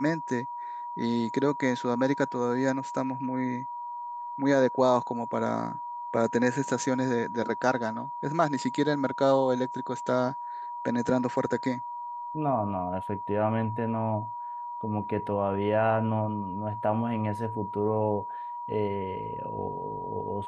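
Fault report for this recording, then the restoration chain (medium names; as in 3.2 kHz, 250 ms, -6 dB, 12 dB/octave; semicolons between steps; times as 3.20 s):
whine 960 Hz -34 dBFS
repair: band-stop 960 Hz, Q 30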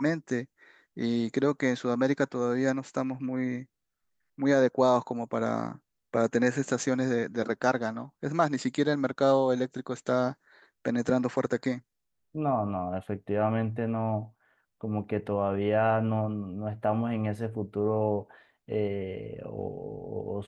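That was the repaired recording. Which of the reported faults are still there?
nothing left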